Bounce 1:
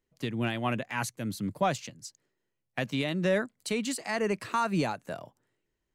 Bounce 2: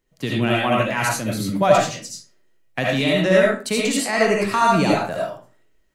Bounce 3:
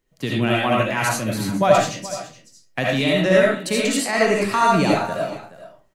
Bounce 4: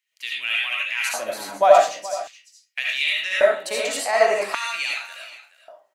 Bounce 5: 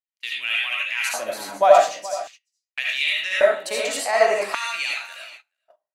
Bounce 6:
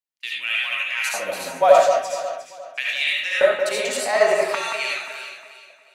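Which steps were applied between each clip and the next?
reverberation RT60 0.40 s, pre-delay 35 ms, DRR -4 dB; trim +7 dB
delay 423 ms -16 dB
LFO high-pass square 0.44 Hz 670–2400 Hz; trim -3 dB
gate -41 dBFS, range -25 dB
frequency shift -27 Hz; echo whose repeats swap between lows and highs 178 ms, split 2.1 kHz, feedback 57%, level -6.5 dB

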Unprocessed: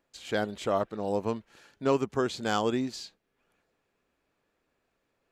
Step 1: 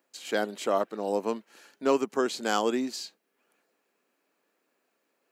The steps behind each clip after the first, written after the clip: high-pass 220 Hz 24 dB/octave; treble shelf 9 kHz +10 dB; band-stop 3.5 kHz, Q 16; trim +1.5 dB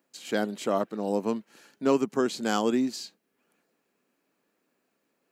tone controls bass +13 dB, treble +1 dB; trim -1.5 dB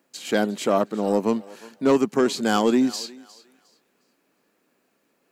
sine folder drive 3 dB, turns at -10.5 dBFS; thinning echo 358 ms, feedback 26%, high-pass 490 Hz, level -18.5 dB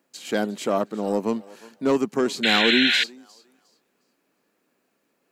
painted sound noise, 2.43–3.04 s, 1.4–4.2 kHz -18 dBFS; trim -2.5 dB

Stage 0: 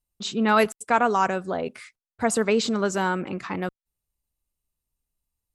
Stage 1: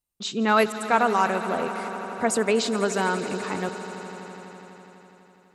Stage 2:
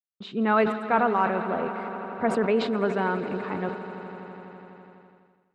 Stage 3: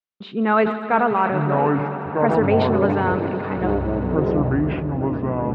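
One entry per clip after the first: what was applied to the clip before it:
bass shelf 90 Hz -11.5 dB; echo with a slow build-up 83 ms, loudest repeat 5, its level -17 dB
expander -47 dBFS; distance through air 460 m; decay stretcher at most 84 dB/s
low-pass 3.8 kHz 12 dB/octave; ever faster or slower copies 797 ms, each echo -7 st, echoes 3; trim +4 dB

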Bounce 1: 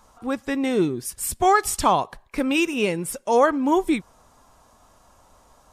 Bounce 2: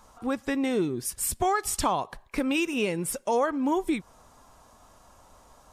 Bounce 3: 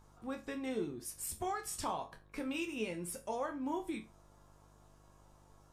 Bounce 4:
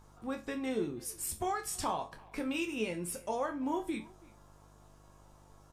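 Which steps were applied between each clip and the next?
compression 2.5:1, threshold -25 dBFS, peak gain reduction 9 dB
mains buzz 50 Hz, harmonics 35, -48 dBFS -7 dB/octave; chord resonator D2 minor, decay 0.27 s; trim -1.5 dB
speakerphone echo 330 ms, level -22 dB; trim +3.5 dB

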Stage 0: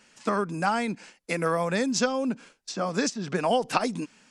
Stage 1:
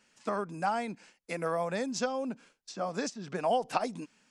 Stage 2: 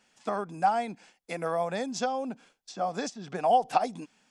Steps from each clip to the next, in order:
dynamic bell 700 Hz, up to +7 dB, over -39 dBFS, Q 1.6; trim -9 dB
small resonant body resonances 750/3400 Hz, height 9 dB, ringing for 25 ms

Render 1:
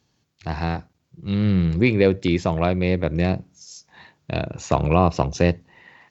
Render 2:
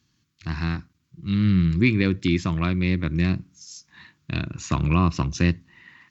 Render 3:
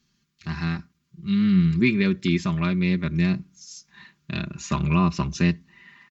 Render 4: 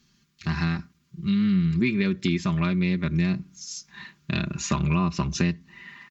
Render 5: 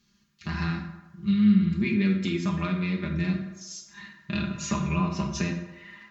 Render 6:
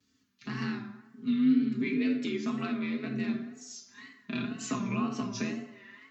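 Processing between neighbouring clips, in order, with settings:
high-order bell 600 Hz -15.5 dB 1.3 oct
comb 5 ms, depth 81%; trim -2.5 dB
compression 3:1, threshold -28 dBFS, peak gain reduction 10 dB; trim +5.5 dB
reverberation RT60 1.1 s, pre-delay 5 ms, DRR 0.5 dB; trim -5.5 dB
vibrato 2 Hz 98 cents; frequency shift +51 Hz; trim -5 dB

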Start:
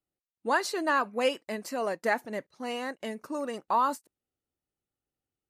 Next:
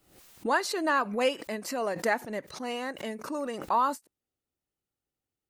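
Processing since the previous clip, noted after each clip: swell ahead of each attack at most 90 dB/s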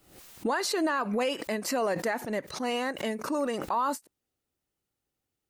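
peak limiter -24.5 dBFS, peak gain reduction 10.5 dB; trim +4.5 dB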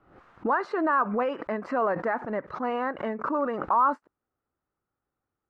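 resonant low-pass 1.3 kHz, resonance Q 2.6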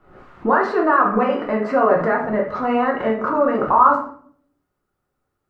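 simulated room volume 72 m³, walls mixed, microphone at 0.92 m; trim +5 dB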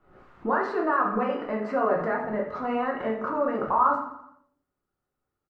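feedback delay 85 ms, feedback 56%, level -15.5 dB; trim -8.5 dB

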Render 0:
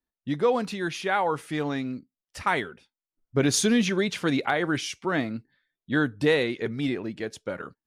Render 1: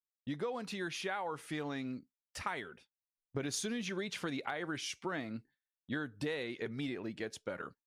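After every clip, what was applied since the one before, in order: gate with hold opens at -41 dBFS; bass shelf 490 Hz -3.5 dB; compression, threshold -31 dBFS, peak gain reduction 11.5 dB; trim -4 dB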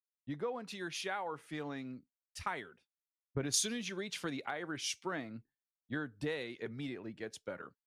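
three bands expanded up and down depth 100%; trim -1.5 dB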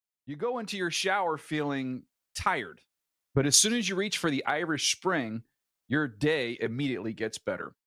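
level rider gain up to 11 dB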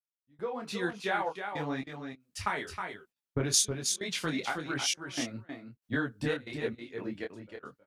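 trance gate "...xxxx.xx..xx" 116 bpm -24 dB; on a send: delay 317 ms -7 dB; on the sum: detune thickener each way 35 cents

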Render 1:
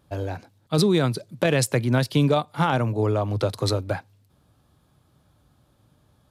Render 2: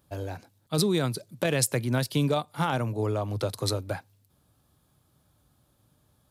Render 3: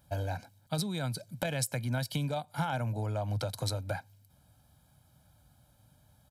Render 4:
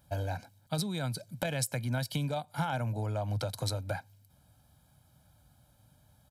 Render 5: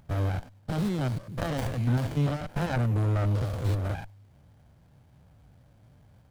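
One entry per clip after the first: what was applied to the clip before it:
treble shelf 7.3 kHz +12 dB; trim -5.5 dB
compression 4:1, threshold -32 dBFS, peak gain reduction 10.5 dB; comb 1.3 ms, depth 69%
no audible change
spectrogram pixelated in time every 100 ms; sliding maximum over 33 samples; trim +8.5 dB

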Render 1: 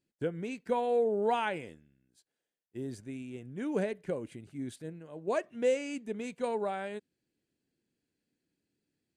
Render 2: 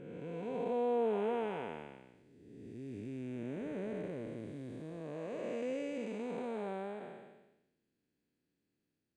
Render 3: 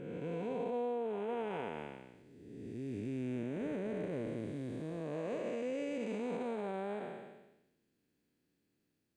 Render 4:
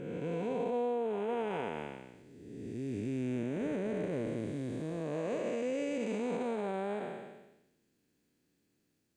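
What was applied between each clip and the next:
spectral blur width 635 ms; low-pass 3.3 kHz 6 dB/octave; trim +1 dB
peak limiter -34.5 dBFS, peak gain reduction 10.5 dB; trim +4 dB
peaking EQ 6.9 kHz +4.5 dB 0.77 oct; trim +3.5 dB

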